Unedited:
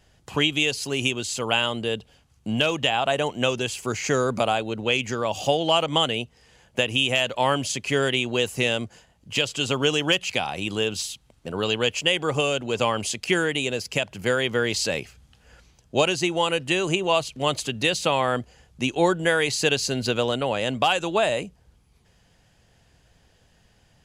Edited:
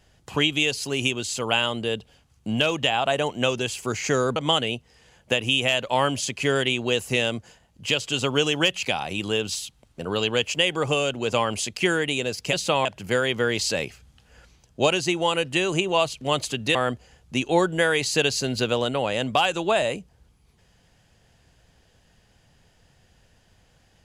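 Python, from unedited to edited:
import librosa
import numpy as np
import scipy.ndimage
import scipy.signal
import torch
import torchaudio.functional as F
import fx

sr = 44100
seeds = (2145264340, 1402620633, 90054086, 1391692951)

y = fx.edit(x, sr, fx.cut(start_s=4.36, length_s=1.47),
    fx.move(start_s=17.9, length_s=0.32, to_s=14.0), tone=tone)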